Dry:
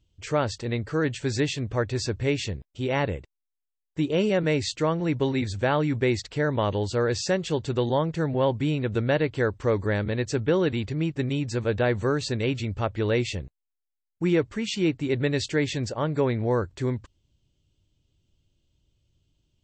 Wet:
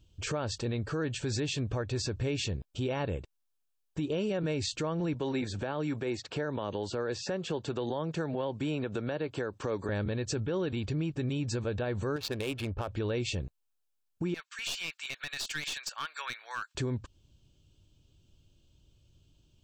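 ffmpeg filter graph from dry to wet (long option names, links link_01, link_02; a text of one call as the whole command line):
ffmpeg -i in.wav -filter_complex "[0:a]asettb=1/sr,asplit=3[link_01][link_02][link_03];[link_01]atrim=end=5.144[link_04];[link_02]atrim=start=5.14:end=9.89,asetpts=PTS-STARTPTS,afade=type=in:duration=0.004:curve=qsin,afade=type=out:start_time=4.746:duration=0.004:curve=qsin,highpass=150,acrossover=split=450|2200|5900[link_05][link_06][link_07][link_08];[link_05]acompressor=threshold=-34dB:ratio=3[link_09];[link_06]acompressor=threshold=-31dB:ratio=3[link_10];[link_07]acompressor=threshold=-49dB:ratio=3[link_11];[link_08]acompressor=threshold=-58dB:ratio=3[link_12];[link_09][link_10][link_11][link_12]amix=inputs=4:normalize=0[link_13];[link_03]atrim=start=9.886[link_14];[link_04][link_13]acrossfade=duration=0.004:curve1=hsin:curve2=qsin[link_15];[link_15][link_14]acrossfade=duration=0.004:curve1=qsin:curve2=hsin,asettb=1/sr,asplit=3[link_16][link_17][link_18];[link_16]atrim=end=12.164[link_19];[link_17]atrim=start=12.16:end=12.88,asetpts=PTS-STARTPTS,afade=type=in:duration=0.004:curve=qsin,afade=type=out:start_time=0.716:duration=0.004:curve=qsin,equalizer=frequency=150:width_type=o:width=2.1:gain=-11,adynamicsmooth=sensitivity=7.5:basefreq=690[link_20];[link_18]atrim=start=12.876[link_21];[link_19][link_20]acrossfade=duration=0.004:curve1=hsin:curve2=qsin[link_22];[link_22][link_21]acrossfade=duration=0.004:curve1=qsin:curve2=hsin,asettb=1/sr,asplit=3[link_23][link_24][link_25];[link_23]atrim=end=14.344[link_26];[link_24]atrim=start=14.34:end=16.75,asetpts=PTS-STARTPTS,afade=type=in:duration=0.004:curve=qsin,afade=type=out:start_time=2.406:duration=0.004:curve=qsin,highpass=frequency=1400:width=0.5412,highpass=frequency=1400:width=1.3066,aeval=exprs='clip(val(0),-1,0.0188)':channel_layout=same[link_27];[link_25]atrim=start=16.746[link_28];[link_26][link_27]acrossfade=duration=0.004:curve1=hsin:curve2=qsin[link_29];[link_29][link_28]acrossfade=duration=0.004:curve1=qsin:curve2=hsin,bandreject=frequency=2000:width=5.3,acompressor=threshold=-37dB:ratio=2,alimiter=level_in=5.5dB:limit=-24dB:level=0:latency=1:release=65,volume=-5.5dB,volume=5.5dB" out.wav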